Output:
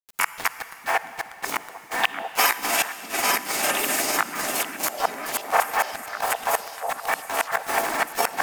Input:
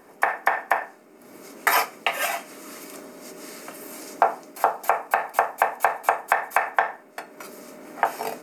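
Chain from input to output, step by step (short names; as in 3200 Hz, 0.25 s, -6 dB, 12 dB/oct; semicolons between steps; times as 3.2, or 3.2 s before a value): regenerating reverse delay 0.422 s, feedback 68%, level -5.5 dB; HPF 170 Hz 6 dB/oct; high shelf 2200 Hz +8.5 dB; in parallel at +3 dB: limiter -10 dBFS, peak gain reduction 8.5 dB; on the sum: compressor 6:1, threshold -14 dBFS, peak gain reduction 7.5 dB; harmoniser +4 st -8 dB; flipped gate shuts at -6 dBFS, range -37 dB; bit-crush 5-bit; grains, spray 17 ms, pitch spread up and down by 0 st; delay with a stepping band-pass 0.648 s, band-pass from 220 Hz, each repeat 1.4 oct, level -3 dB; on a send at -13 dB: reverb RT60 3.3 s, pre-delay 42 ms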